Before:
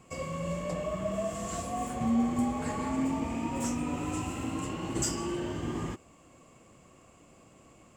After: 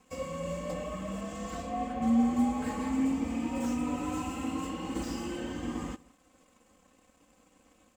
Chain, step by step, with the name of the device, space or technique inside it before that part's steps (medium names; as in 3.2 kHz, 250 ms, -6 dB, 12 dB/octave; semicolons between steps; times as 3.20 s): 1.20–2.01 s: low-pass 7.3 kHz -> 3.2 kHz 12 dB/octave; early transistor amplifier (crossover distortion -59.5 dBFS; slew-rate limiter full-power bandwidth 34 Hz); comb 3.9 ms, depth 88%; delay 162 ms -23.5 dB; trim -3 dB